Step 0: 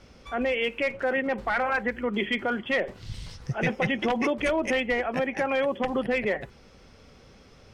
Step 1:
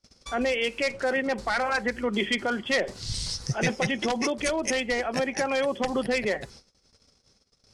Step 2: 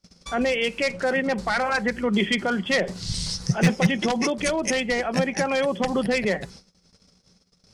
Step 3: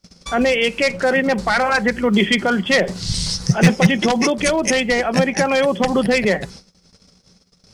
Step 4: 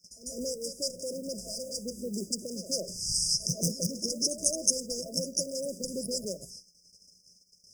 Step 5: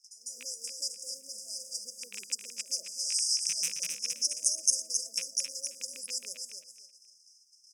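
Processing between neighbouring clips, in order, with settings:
gate -49 dBFS, range -33 dB; band shelf 6600 Hz +15 dB; vocal rider within 3 dB 0.5 s
bell 180 Hz +14.5 dB 0.28 oct; wavefolder -12.5 dBFS; gain +2.5 dB
short-mantissa float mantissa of 6-bit; gain +6.5 dB
pre-emphasis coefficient 0.9; pre-echo 0.149 s -12 dB; FFT band-reject 670–4800 Hz
rattling part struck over -37 dBFS, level -22 dBFS; band-pass 7400 Hz, Q 0.73; on a send: feedback echo 0.267 s, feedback 21%, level -6 dB

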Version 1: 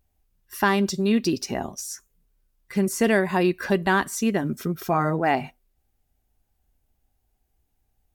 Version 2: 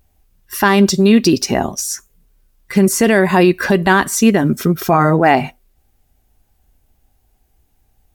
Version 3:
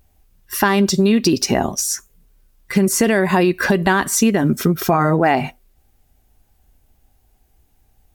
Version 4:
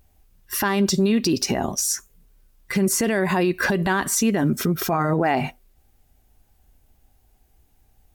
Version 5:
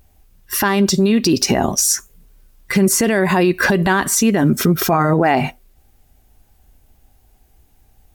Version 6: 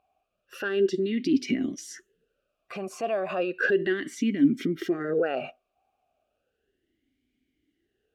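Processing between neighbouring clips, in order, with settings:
maximiser +13 dB; gain -1 dB
compressor, threshold -12 dBFS, peak gain reduction 6.5 dB; gain +1 dB
limiter -10.5 dBFS, peak gain reduction 8 dB; gain -1.5 dB
vocal rider 0.5 s; gain +6.5 dB
vowel sweep a-i 0.34 Hz

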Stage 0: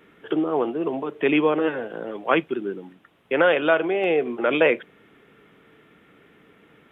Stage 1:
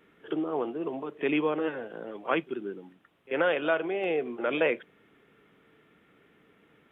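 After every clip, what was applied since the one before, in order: pre-echo 40 ms -20 dB; gain -7.5 dB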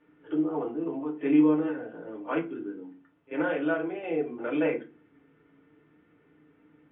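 air absorption 350 m; FDN reverb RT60 0.3 s, low-frequency decay 1.6×, high-frequency decay 0.65×, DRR -2 dB; gain -6 dB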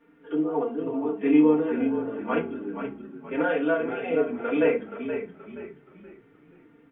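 comb 4.3 ms, depth 87%; on a send: frequency-shifting echo 0.475 s, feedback 36%, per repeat -33 Hz, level -8.5 dB; on the sum: gain +1 dB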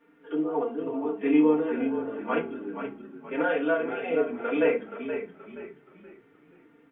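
low shelf 170 Hz -10 dB

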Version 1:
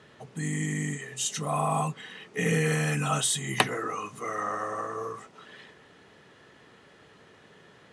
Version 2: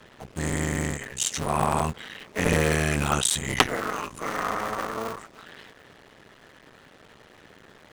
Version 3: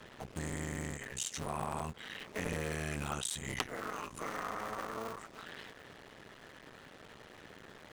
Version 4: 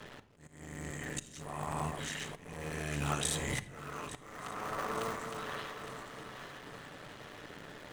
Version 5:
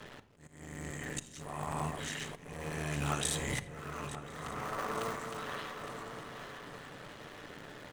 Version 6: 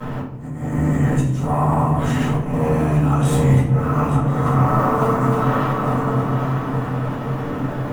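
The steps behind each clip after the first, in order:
cycle switcher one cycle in 2, muted; gain +6 dB
compressor 2.5:1, threshold -38 dBFS, peak gain reduction 16.5 dB; gain -2 dB
regenerating reverse delay 0.431 s, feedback 61%, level -7.5 dB; auto swell 0.75 s; on a send at -11 dB: reverb RT60 0.75 s, pre-delay 7 ms; on the sum: gain +3 dB
outdoor echo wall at 180 m, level -10 dB
graphic EQ 125/250/1000/2000/4000/8000 Hz +12/+9/+8/-5/-10/-7 dB; compressor 12:1, threshold -30 dBFS, peak gain reduction 10.5 dB; shoebox room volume 69 m³, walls mixed, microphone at 2 m; gain +7.5 dB

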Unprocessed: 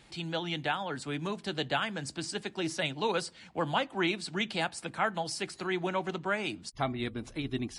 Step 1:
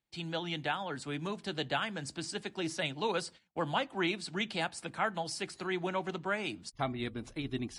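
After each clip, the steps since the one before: gate -47 dBFS, range -29 dB; gain -2.5 dB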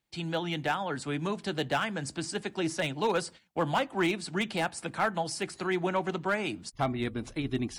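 overloaded stage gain 25.5 dB; dynamic EQ 3900 Hz, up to -5 dB, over -49 dBFS, Q 1; gain +5.5 dB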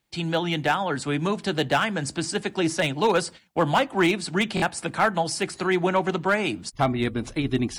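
stuck buffer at 4.55, samples 1024, times 2; gain +7 dB

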